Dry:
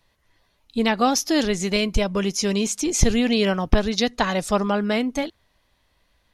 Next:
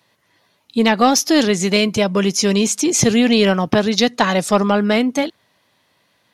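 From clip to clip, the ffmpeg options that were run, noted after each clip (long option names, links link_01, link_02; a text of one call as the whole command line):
ffmpeg -i in.wav -filter_complex "[0:a]highpass=frequency=120:width=0.5412,highpass=frequency=120:width=1.3066,asplit=2[link_01][link_02];[link_02]acontrast=86,volume=-2.5dB[link_03];[link_01][link_03]amix=inputs=2:normalize=0,volume=-2dB" out.wav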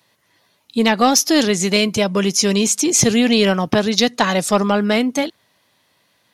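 ffmpeg -i in.wav -af "highshelf=frequency=5000:gain=5.5,volume=-1dB" out.wav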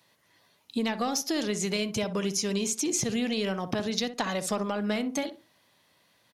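ffmpeg -i in.wav -filter_complex "[0:a]acompressor=threshold=-22dB:ratio=6,asplit=2[link_01][link_02];[link_02]adelay=62,lowpass=frequency=1000:poles=1,volume=-9dB,asplit=2[link_03][link_04];[link_04]adelay=62,lowpass=frequency=1000:poles=1,volume=0.28,asplit=2[link_05][link_06];[link_06]adelay=62,lowpass=frequency=1000:poles=1,volume=0.28[link_07];[link_01][link_03][link_05][link_07]amix=inputs=4:normalize=0,volume=-4.5dB" out.wav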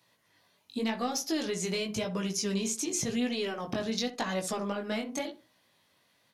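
ffmpeg -i in.wav -af "flanger=delay=16:depth=6.3:speed=0.91" out.wav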